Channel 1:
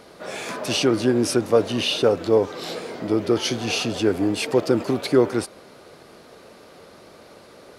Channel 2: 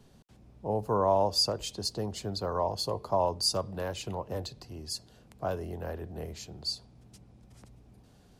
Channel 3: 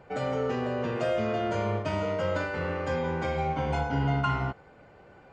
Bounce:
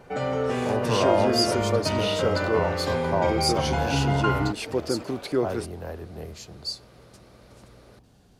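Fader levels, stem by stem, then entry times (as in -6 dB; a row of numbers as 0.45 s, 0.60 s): -7.5 dB, +1.5 dB, +3.0 dB; 0.20 s, 0.00 s, 0.00 s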